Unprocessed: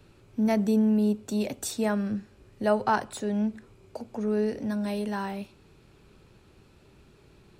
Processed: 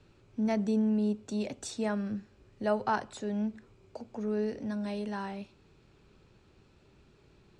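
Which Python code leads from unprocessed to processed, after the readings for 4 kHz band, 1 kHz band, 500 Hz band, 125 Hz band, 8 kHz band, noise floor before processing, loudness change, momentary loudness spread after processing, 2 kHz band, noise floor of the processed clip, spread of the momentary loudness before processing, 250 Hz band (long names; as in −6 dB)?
−5.0 dB, −5.0 dB, −5.0 dB, −5.0 dB, −7.5 dB, −58 dBFS, −5.0 dB, 15 LU, −5.0 dB, −63 dBFS, 15 LU, −5.0 dB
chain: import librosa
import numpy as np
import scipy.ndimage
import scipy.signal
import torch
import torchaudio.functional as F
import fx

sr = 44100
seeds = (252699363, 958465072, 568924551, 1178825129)

y = scipy.signal.sosfilt(scipy.signal.butter(4, 7800.0, 'lowpass', fs=sr, output='sos'), x)
y = y * librosa.db_to_amplitude(-5.0)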